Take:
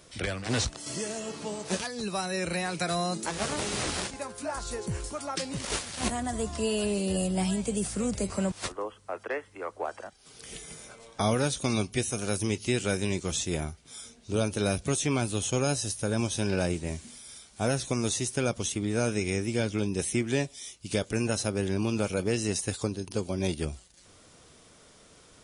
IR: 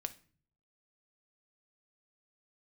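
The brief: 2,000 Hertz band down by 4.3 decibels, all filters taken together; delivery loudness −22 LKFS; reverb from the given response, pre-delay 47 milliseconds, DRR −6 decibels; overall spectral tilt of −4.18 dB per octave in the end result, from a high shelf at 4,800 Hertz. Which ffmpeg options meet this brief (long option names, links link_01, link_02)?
-filter_complex "[0:a]equalizer=frequency=2000:width_type=o:gain=-6.5,highshelf=frequency=4800:gain=3.5,asplit=2[link_01][link_02];[1:a]atrim=start_sample=2205,adelay=47[link_03];[link_02][link_03]afir=irnorm=-1:irlink=0,volume=7.5dB[link_04];[link_01][link_04]amix=inputs=2:normalize=0,volume=1dB"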